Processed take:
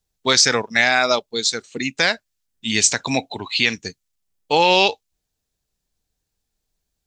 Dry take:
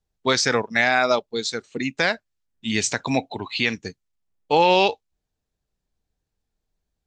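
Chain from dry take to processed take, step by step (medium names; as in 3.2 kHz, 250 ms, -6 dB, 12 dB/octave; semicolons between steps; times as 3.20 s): treble shelf 3 kHz +11 dB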